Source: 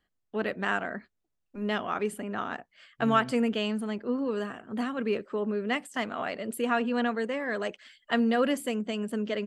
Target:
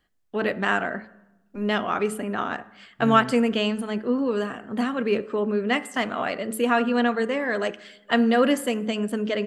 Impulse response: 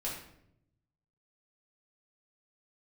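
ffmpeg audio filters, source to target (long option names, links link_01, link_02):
-filter_complex "[0:a]bandreject=frequency=108.5:width_type=h:width=4,bandreject=frequency=217:width_type=h:width=4,bandreject=frequency=325.5:width_type=h:width=4,bandreject=frequency=434:width_type=h:width=4,bandreject=frequency=542.5:width_type=h:width=4,bandreject=frequency=651:width_type=h:width=4,bandreject=frequency=759.5:width_type=h:width=4,bandreject=frequency=868:width_type=h:width=4,bandreject=frequency=976.5:width_type=h:width=4,bandreject=frequency=1085:width_type=h:width=4,bandreject=frequency=1193.5:width_type=h:width=4,bandreject=frequency=1302:width_type=h:width=4,bandreject=frequency=1410.5:width_type=h:width=4,bandreject=frequency=1519:width_type=h:width=4,bandreject=frequency=1627.5:width_type=h:width=4,bandreject=frequency=1736:width_type=h:width=4,bandreject=frequency=1844.5:width_type=h:width=4,bandreject=frequency=1953:width_type=h:width=4,bandreject=frequency=2061.5:width_type=h:width=4,asplit=2[link_01][link_02];[1:a]atrim=start_sample=2205,asetrate=27783,aresample=44100[link_03];[link_02][link_03]afir=irnorm=-1:irlink=0,volume=-23dB[link_04];[link_01][link_04]amix=inputs=2:normalize=0,volume=5.5dB"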